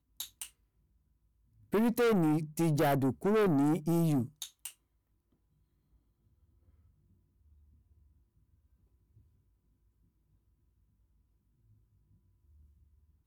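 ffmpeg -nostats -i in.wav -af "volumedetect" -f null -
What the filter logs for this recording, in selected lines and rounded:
mean_volume: -35.4 dB
max_volume: -24.8 dB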